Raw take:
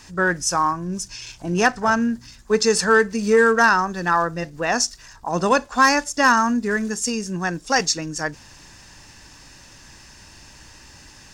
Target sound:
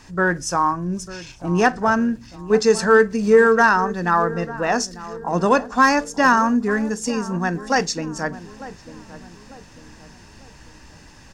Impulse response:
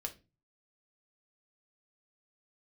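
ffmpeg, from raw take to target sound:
-filter_complex "[0:a]highshelf=f=2200:g=-8.5,asplit=2[s0][s1];[s1]adelay=897,lowpass=f=1100:p=1,volume=0.178,asplit=2[s2][s3];[s3]adelay=897,lowpass=f=1100:p=1,volume=0.47,asplit=2[s4][s5];[s5]adelay=897,lowpass=f=1100:p=1,volume=0.47,asplit=2[s6][s7];[s7]adelay=897,lowpass=f=1100:p=1,volume=0.47[s8];[s0][s2][s4][s6][s8]amix=inputs=5:normalize=0,asplit=2[s9][s10];[1:a]atrim=start_sample=2205[s11];[s10][s11]afir=irnorm=-1:irlink=0,volume=0.422[s12];[s9][s12]amix=inputs=2:normalize=0"

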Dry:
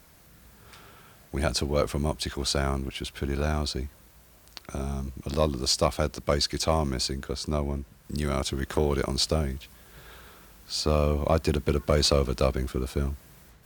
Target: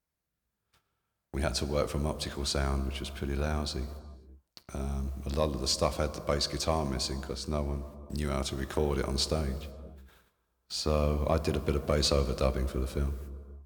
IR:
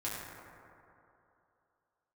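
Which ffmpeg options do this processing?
-filter_complex "[0:a]agate=range=0.0447:threshold=0.00562:ratio=16:detection=peak,asplit=2[s0][s1];[1:a]atrim=start_sample=2205,afade=t=out:st=0.4:d=0.01,atrim=end_sample=18081,asetrate=28224,aresample=44100[s2];[s1][s2]afir=irnorm=-1:irlink=0,volume=0.158[s3];[s0][s3]amix=inputs=2:normalize=0,volume=0.531"

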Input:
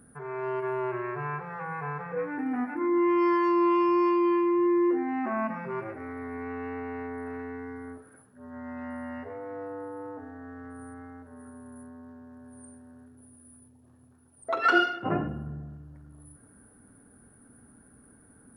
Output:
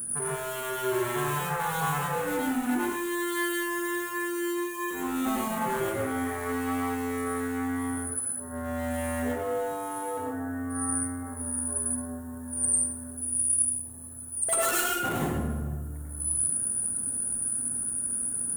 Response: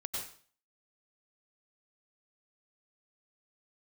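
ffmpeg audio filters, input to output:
-filter_complex "[0:a]acompressor=threshold=0.0355:ratio=6,volume=56.2,asoftclip=hard,volume=0.0178,aexciter=amount=13.7:drive=4.6:freq=7300[s0];[1:a]atrim=start_sample=2205[s1];[s0][s1]afir=irnorm=-1:irlink=0,volume=2.51"

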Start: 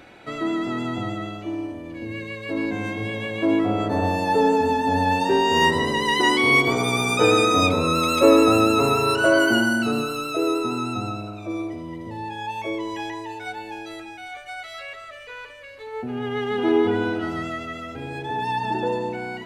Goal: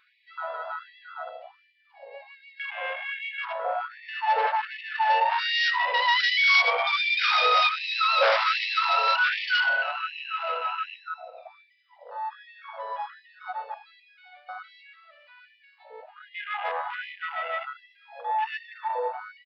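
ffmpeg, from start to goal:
-filter_complex "[0:a]afwtdn=0.0316,highpass=f=270:p=1,aresample=11025,aeval=exprs='0.596*sin(PI/2*3.16*val(0)/0.596)':c=same,aresample=44100,flanger=delay=5.3:depth=1.3:regen=-83:speed=1.7:shape=triangular,asplit=2[s0][s1];[s1]aecho=0:1:98:0.075[s2];[s0][s2]amix=inputs=2:normalize=0,afftfilt=real='re*gte(b*sr/1024,450*pow(1800/450,0.5+0.5*sin(2*PI*1.3*pts/sr)))':imag='im*gte(b*sr/1024,450*pow(1800/450,0.5+0.5*sin(2*PI*1.3*pts/sr)))':win_size=1024:overlap=0.75,volume=0.473"

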